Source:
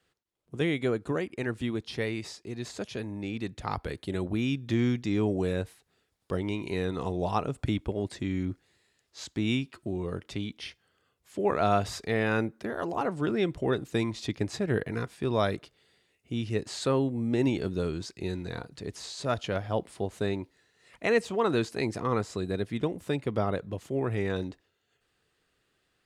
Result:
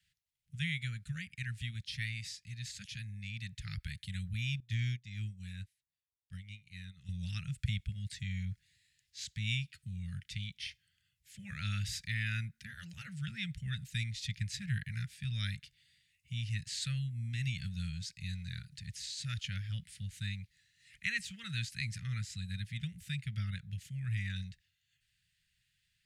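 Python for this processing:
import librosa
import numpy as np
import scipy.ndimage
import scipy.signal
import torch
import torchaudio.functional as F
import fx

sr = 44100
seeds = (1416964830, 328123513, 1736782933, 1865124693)

y = scipy.signal.sosfilt(scipy.signal.cheby2(4, 40, [270.0, 1100.0], 'bandstop', fs=sr, output='sos'), x)
y = fx.upward_expand(y, sr, threshold_db=-45.0, expansion=2.5, at=(4.6, 7.09))
y = F.gain(torch.from_numpy(y), -1.5).numpy()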